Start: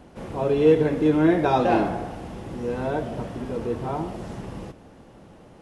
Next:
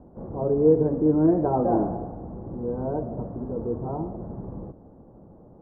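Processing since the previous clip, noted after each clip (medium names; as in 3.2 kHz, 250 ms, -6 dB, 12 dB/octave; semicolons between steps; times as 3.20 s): Bessel low-pass 660 Hz, order 6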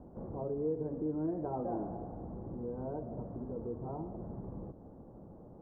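compression 2:1, threshold -40 dBFS, peak gain reduction 14.5 dB; trim -3 dB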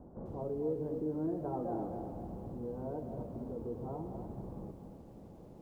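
bit-crushed delay 255 ms, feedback 35%, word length 11-bit, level -8 dB; trim -1 dB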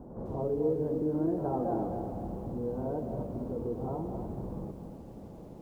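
reverse echo 66 ms -9.5 dB; trim +5.5 dB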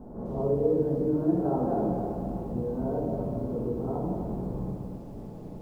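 simulated room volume 440 m³, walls mixed, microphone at 1.5 m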